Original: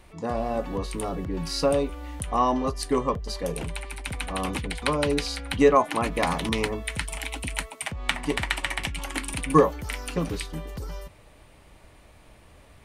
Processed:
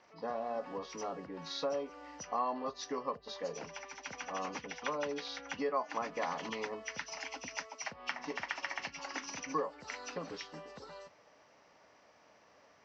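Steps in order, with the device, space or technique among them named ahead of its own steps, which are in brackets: hearing aid with frequency lowering (nonlinear frequency compression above 2400 Hz 1.5:1; compressor 2.5:1, threshold -27 dBFS, peak gain reduction 10.5 dB; speaker cabinet 340–5500 Hz, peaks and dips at 350 Hz -7 dB, 2400 Hz -5 dB, 3500 Hz -7 dB, 5000 Hz +5 dB); gain -5 dB

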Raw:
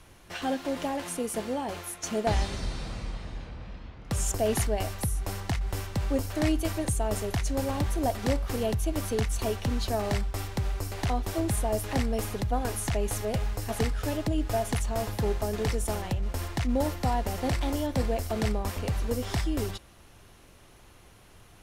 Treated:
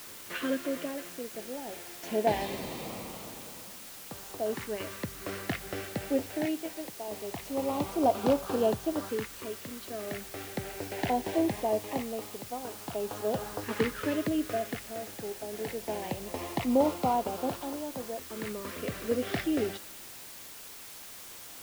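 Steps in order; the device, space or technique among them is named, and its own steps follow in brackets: 6.45–7.08 HPF 200 Hz; shortwave radio (BPF 250–2600 Hz; tremolo 0.36 Hz, depth 75%; LFO notch saw up 0.22 Hz 690–2400 Hz; white noise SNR 13 dB); gain +5 dB

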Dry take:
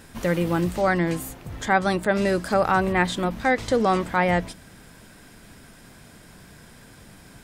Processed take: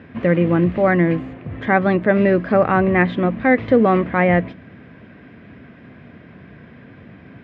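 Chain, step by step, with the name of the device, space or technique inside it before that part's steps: bass cabinet (speaker cabinet 74–2400 Hz, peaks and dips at 250 Hz +4 dB, 870 Hz -9 dB, 1400 Hz -6 dB); gain +7 dB

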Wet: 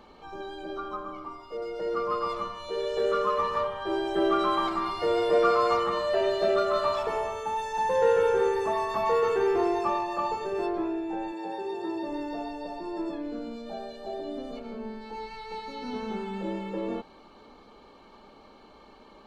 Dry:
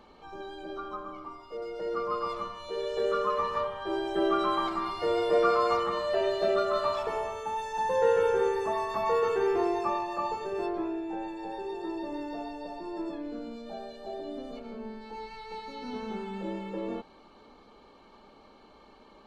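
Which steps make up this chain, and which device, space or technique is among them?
parallel distortion (in parallel at -13 dB: hard clip -28.5 dBFS, distortion -8 dB); 11.31–12.07 on the sum: HPF 180 Hz -> 63 Hz 24 dB/oct; gain +1 dB

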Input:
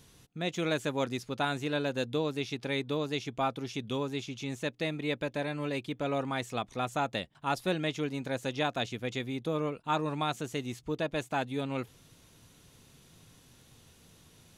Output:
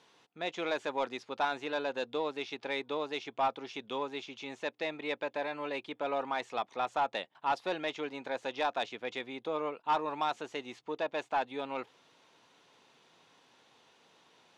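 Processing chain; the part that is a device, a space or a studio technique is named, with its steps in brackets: intercom (BPF 420–3900 Hz; bell 890 Hz +6 dB 0.52 oct; soft clip -21 dBFS, distortion -17 dB)

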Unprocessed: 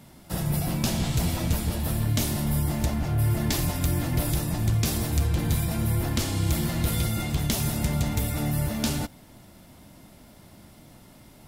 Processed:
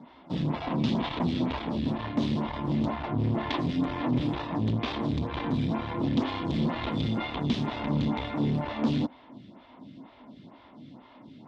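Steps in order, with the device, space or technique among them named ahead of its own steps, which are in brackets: vibe pedal into a guitar amplifier (photocell phaser 2.1 Hz; tube stage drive 28 dB, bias 0.65; speaker cabinet 85–3700 Hz, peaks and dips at 86 Hz -8 dB, 260 Hz +10 dB, 1000 Hz +8 dB, 1500 Hz -3 dB, 3500 Hz +5 dB); gain +5.5 dB

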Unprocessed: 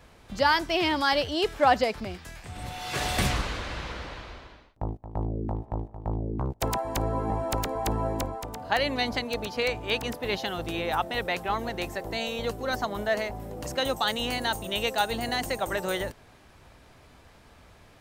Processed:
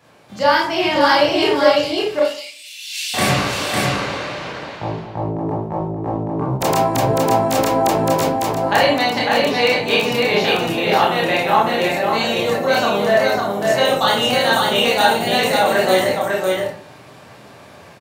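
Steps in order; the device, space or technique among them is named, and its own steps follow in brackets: 1.64–3.14 steep high-pass 2600 Hz 36 dB/oct; far laptop microphone (reverb RT60 0.50 s, pre-delay 23 ms, DRR -5 dB; HPF 110 Hz 24 dB/oct; AGC gain up to 6 dB); echo 0.552 s -3 dB

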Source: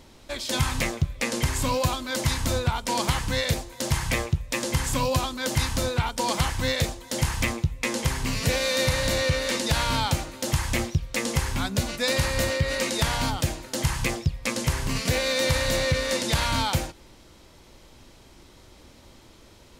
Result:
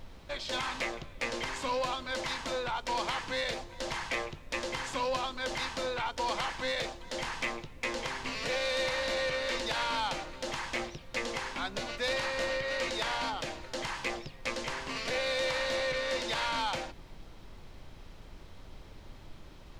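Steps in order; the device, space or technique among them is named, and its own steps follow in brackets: aircraft cabin announcement (BPF 400–4200 Hz; soft clip -21 dBFS, distortion -17 dB; brown noise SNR 12 dB); gain -3 dB

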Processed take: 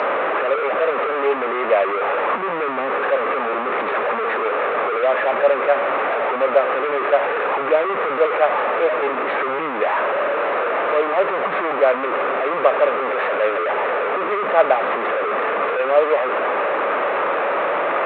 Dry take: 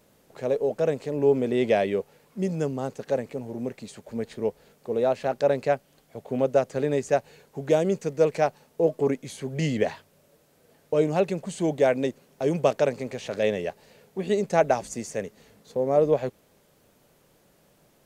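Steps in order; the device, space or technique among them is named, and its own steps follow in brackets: Wiener smoothing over 15 samples; 3.65–4.44 dynamic EQ 600 Hz, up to -5 dB, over -43 dBFS, Q 1.7; digital answering machine (BPF 360–3000 Hz; delta modulation 16 kbps, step -20 dBFS; speaker cabinet 460–4200 Hz, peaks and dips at 570 Hz +3 dB, 1200 Hz +9 dB, 3100 Hz -8 dB); gain +5.5 dB

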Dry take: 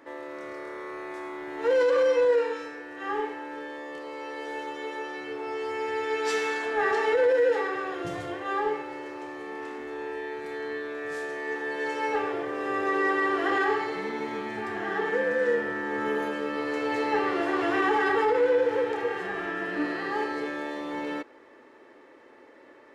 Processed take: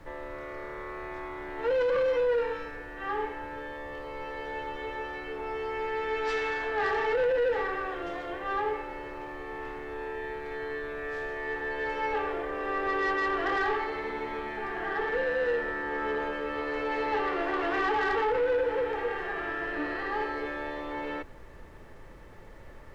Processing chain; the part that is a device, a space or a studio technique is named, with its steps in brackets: aircraft cabin announcement (BPF 360–3400 Hz; soft clip -21.5 dBFS, distortion -16 dB; brown noise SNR 16 dB)

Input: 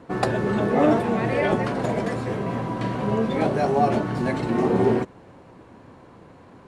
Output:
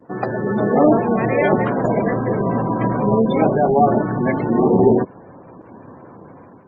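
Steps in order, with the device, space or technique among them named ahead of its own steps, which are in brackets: noise-suppressed video call (HPF 110 Hz 12 dB/oct; spectral gate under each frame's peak -20 dB strong; AGC gain up to 8.5 dB; Opus 24 kbps 48000 Hz)

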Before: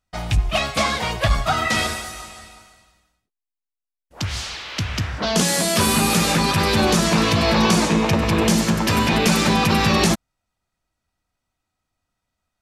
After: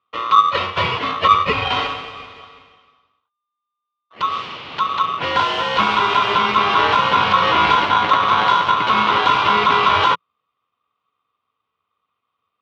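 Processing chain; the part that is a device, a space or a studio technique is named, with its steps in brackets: ring modulator pedal into a guitar cabinet (polarity switched at an audio rate 1200 Hz; speaker cabinet 91–3500 Hz, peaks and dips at 98 Hz +4 dB, 170 Hz +3 dB, 440 Hz +4 dB, 1100 Hz +9 dB, 1700 Hz -6 dB, 2900 Hz +5 dB)

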